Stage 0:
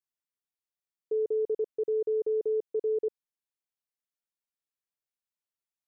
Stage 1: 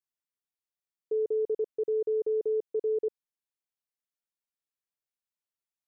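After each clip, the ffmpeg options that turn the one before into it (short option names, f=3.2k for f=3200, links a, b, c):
-af anull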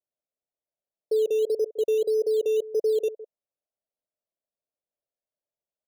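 -filter_complex "[0:a]lowpass=f=610:t=q:w=4.9,acrossover=split=330[a][b];[a]acrusher=samples=11:mix=1:aa=0.000001:lfo=1:lforange=6.6:lforate=1.7[c];[b]aecho=1:1:160:0.188[d];[c][d]amix=inputs=2:normalize=0"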